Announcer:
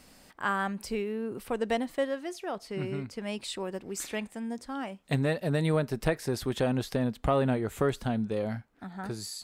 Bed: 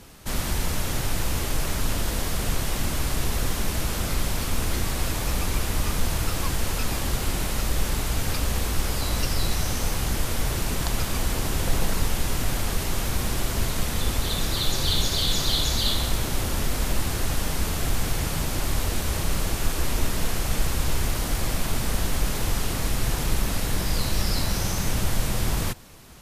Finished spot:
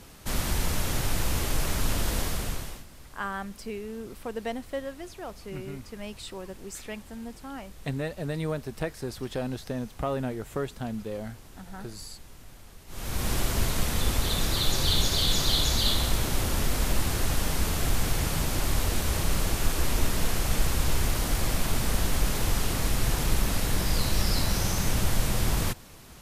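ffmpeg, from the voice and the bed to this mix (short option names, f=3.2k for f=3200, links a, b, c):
-filter_complex "[0:a]adelay=2750,volume=-4dB[a];[1:a]volume=21dB,afade=t=out:st=2.19:d=0.66:silence=0.0794328,afade=t=in:st=12.87:d=0.45:silence=0.0749894[b];[a][b]amix=inputs=2:normalize=0"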